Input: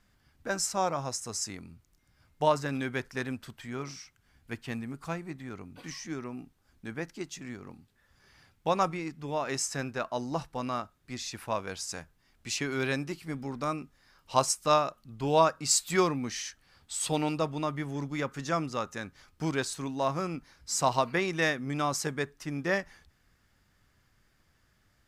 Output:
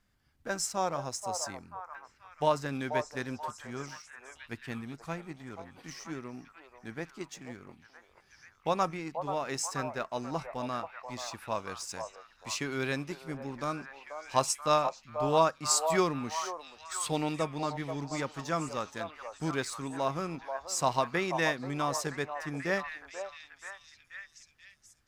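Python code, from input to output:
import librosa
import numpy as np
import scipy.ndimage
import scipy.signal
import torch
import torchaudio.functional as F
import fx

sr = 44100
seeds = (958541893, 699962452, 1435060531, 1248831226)

p1 = np.sign(x) * np.maximum(np.abs(x) - 10.0 ** (-42.0 / 20.0), 0.0)
p2 = x + (p1 * librosa.db_to_amplitude(-4.0))
p3 = fx.echo_stepped(p2, sr, ms=484, hz=740.0, octaves=0.7, feedback_pct=70, wet_db=-4.5)
y = p3 * librosa.db_to_amplitude(-6.0)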